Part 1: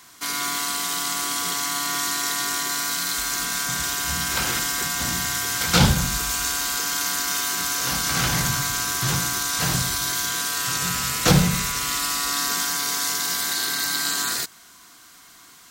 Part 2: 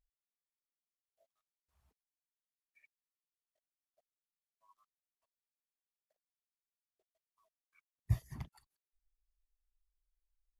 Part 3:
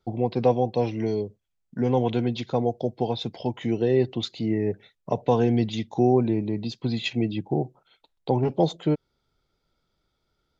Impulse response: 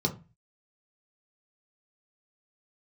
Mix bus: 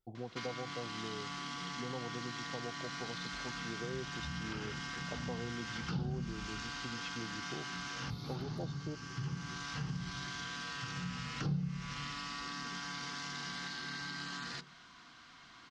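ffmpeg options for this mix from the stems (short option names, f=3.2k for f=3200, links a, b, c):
-filter_complex "[0:a]lowpass=f=4.2k:w=0.5412,lowpass=f=4.2k:w=1.3066,adelay=150,volume=-4.5dB,asplit=2[a][b];[b]volume=-22dB[c];[1:a]volume=-5dB,asplit=3[d][e][f];[e]volume=-22dB[g];[2:a]volume=-17.5dB[h];[f]apad=whole_len=699095[i];[a][i]sidechaincompress=threshold=-58dB:ratio=8:attack=29:release=1060[j];[j][d]amix=inputs=2:normalize=0,highshelf=f=6.6k:g=4.5,acompressor=threshold=-37dB:ratio=6,volume=0dB[k];[3:a]atrim=start_sample=2205[l];[c][g]amix=inputs=2:normalize=0[m];[m][l]afir=irnorm=-1:irlink=0[n];[h][k][n]amix=inputs=3:normalize=0,acompressor=threshold=-38dB:ratio=2.5"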